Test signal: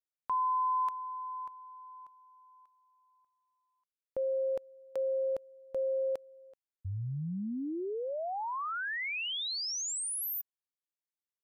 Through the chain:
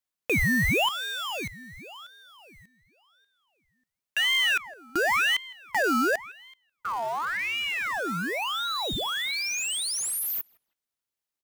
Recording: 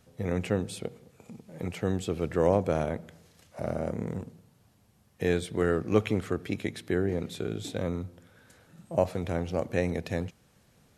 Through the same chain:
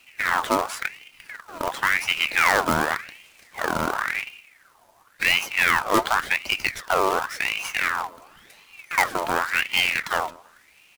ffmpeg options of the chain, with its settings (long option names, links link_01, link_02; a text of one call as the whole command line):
ffmpeg -i in.wav -filter_complex "[0:a]apsyclip=16dB,acrusher=bits=2:mode=log:mix=0:aa=0.000001,asplit=2[link_01][link_02];[link_02]adelay=160,lowpass=frequency=3400:poles=1,volume=-22dB,asplit=2[link_03][link_04];[link_04]adelay=160,lowpass=frequency=3400:poles=1,volume=0.3[link_05];[link_03][link_05]amix=inputs=2:normalize=0[link_06];[link_01][link_06]amix=inputs=2:normalize=0,aeval=exprs='val(0)*sin(2*PI*1700*n/s+1700*0.55/0.92*sin(2*PI*0.92*n/s))':channel_layout=same,volume=-7dB" out.wav